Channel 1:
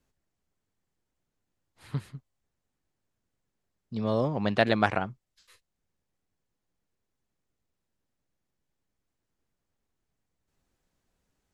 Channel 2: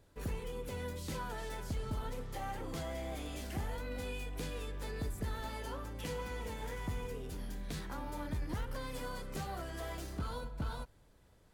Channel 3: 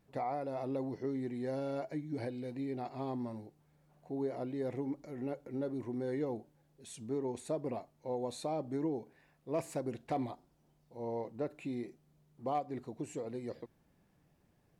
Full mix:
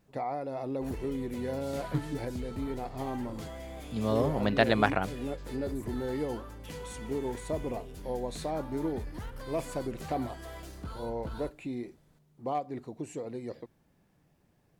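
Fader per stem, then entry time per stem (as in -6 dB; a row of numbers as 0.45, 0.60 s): -1.0, -2.0, +2.5 dB; 0.00, 0.65, 0.00 s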